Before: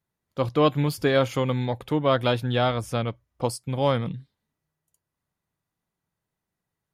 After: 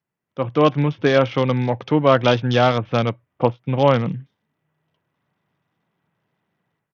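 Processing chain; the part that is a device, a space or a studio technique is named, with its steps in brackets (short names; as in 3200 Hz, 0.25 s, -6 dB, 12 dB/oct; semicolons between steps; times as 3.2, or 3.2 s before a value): Bluetooth headset (HPF 110 Hz 24 dB/oct; AGC gain up to 13 dB; downsampling 8000 Hz; SBC 64 kbps 48000 Hz)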